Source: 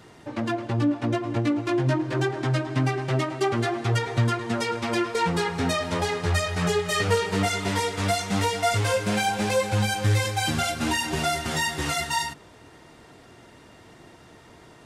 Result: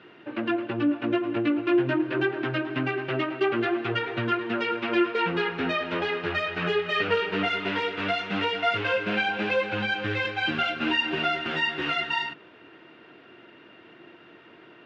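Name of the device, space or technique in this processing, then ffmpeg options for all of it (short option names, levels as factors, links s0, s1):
kitchen radio: -af "highpass=200,equalizer=f=340:t=q:w=4:g=7,equalizer=f=840:t=q:w=4:g=-4,equalizer=f=1500:t=q:w=4:g=7,equalizer=f=2700:t=q:w=4:g=9,lowpass=f=3500:w=0.5412,lowpass=f=3500:w=1.3066,volume=0.75"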